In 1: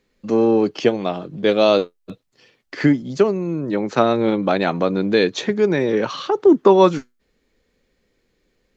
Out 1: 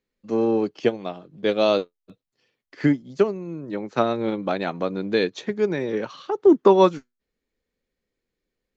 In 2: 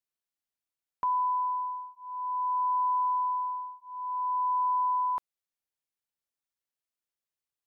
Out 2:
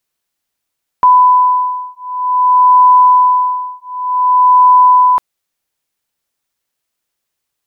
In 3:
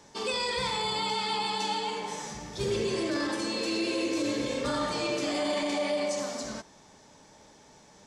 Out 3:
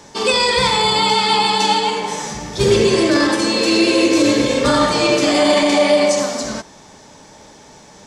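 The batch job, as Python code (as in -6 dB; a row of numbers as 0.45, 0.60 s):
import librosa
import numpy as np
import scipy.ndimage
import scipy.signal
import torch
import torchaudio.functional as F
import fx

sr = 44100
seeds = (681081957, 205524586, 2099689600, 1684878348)

y = fx.upward_expand(x, sr, threshold_db=-35.0, expansion=1.5)
y = librosa.util.normalize(y) * 10.0 ** (-3 / 20.0)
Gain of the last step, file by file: -2.0, +20.5, +17.0 dB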